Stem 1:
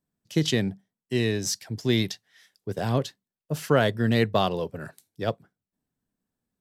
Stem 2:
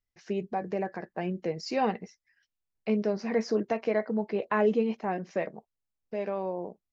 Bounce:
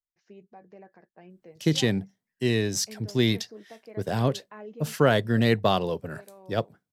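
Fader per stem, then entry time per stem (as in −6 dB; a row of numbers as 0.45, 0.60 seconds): +0.5, −18.0 decibels; 1.30, 0.00 seconds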